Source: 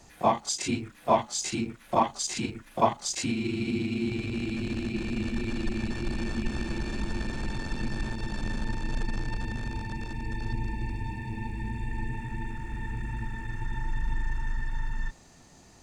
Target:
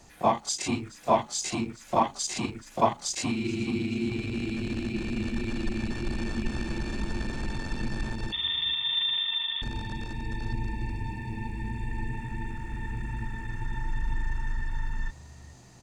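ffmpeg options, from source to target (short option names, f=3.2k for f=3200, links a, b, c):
-filter_complex "[0:a]asettb=1/sr,asplit=3[a][b][c];[a]atrim=end=8.324[d];[b]atrim=start=8.32:end=9.62,asetpts=PTS-STARTPTS,afade=t=in:d=0.004:c=qsin,afade=t=out:st=1.296:d=0.004:c=qsin,lowpass=f=3.1k:t=q:w=0.5098,lowpass=f=3.1k:t=q:w=0.6013,lowpass=f=3.1k:t=q:w=0.9,lowpass=f=3.1k:t=q:w=2.563,afreqshift=-3600[e];[c]atrim=start=9.616[f];[d][e]acrossfade=d=0.004:c1=hsin:c2=qsin[g];[g][f]acrossfade=d=0.004:c1=qsin:c2=hsin,asplit=4[h][i][j][k];[i]adelay=426,afreqshift=49,volume=-20.5dB[l];[j]adelay=852,afreqshift=98,volume=-29.6dB[m];[k]adelay=1278,afreqshift=147,volume=-38.7dB[n];[h][l][m][n]amix=inputs=4:normalize=0"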